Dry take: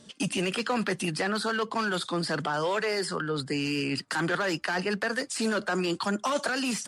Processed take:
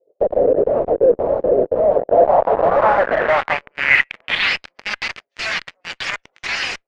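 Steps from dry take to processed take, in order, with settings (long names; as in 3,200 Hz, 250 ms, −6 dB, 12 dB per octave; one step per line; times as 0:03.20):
wavefolder on the positive side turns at −23.5 dBFS
hum removal 137.9 Hz, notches 29
gate on every frequency bin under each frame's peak −15 dB weak
parametric band 580 Hz +12 dB 1.1 octaves
on a send: echo through a band-pass that steps 103 ms, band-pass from 180 Hz, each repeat 0.7 octaves, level −11.5 dB
on the sum: two-band tremolo in antiphase 1.9 Hz, depth 100%, crossover 600 Hz
tube saturation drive 26 dB, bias 0.75
band-pass filter sweep 570 Hz → 5,900 Hz, 0:03.16–0:04.72
in parallel at −6 dB: fuzz pedal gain 61 dB, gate −57 dBFS
on the sum: noise that follows the level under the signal 33 dB
low-pass filter sweep 450 Hz → 2,100 Hz, 0:01.75–0:03.42
level +6 dB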